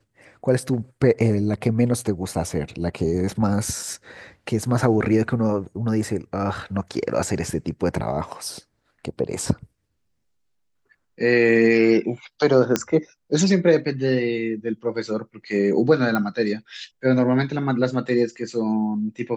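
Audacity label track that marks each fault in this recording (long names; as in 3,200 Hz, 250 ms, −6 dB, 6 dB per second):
12.760000	12.760000	click −5 dBFS
16.150000	16.150000	click −11 dBFS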